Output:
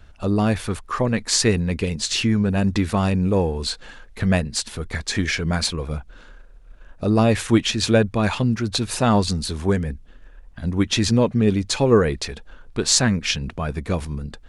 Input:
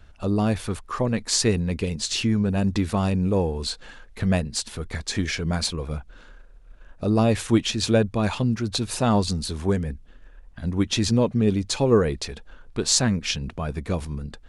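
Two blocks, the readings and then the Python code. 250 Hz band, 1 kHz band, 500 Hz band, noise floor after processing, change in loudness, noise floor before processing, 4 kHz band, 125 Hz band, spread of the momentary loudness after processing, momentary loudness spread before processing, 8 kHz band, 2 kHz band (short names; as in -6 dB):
+2.5 dB, +3.5 dB, +2.5 dB, -46 dBFS, +3.0 dB, -48 dBFS, +3.0 dB, +2.5 dB, 11 LU, 11 LU, +2.5 dB, +5.5 dB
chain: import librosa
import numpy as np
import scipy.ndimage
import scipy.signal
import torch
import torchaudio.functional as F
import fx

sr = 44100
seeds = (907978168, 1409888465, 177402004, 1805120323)

y = fx.dynamic_eq(x, sr, hz=1800.0, q=1.2, threshold_db=-41.0, ratio=4.0, max_db=4)
y = y * librosa.db_to_amplitude(2.5)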